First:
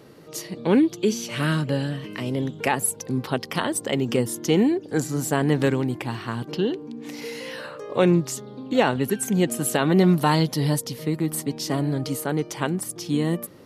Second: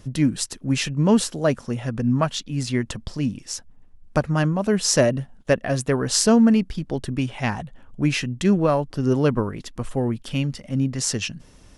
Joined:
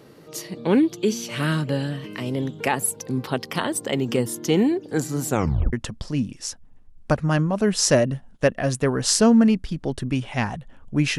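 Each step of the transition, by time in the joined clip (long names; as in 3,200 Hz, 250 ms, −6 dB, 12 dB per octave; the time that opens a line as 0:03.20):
first
0:05.28: tape stop 0.45 s
0:05.73: continue with second from 0:02.79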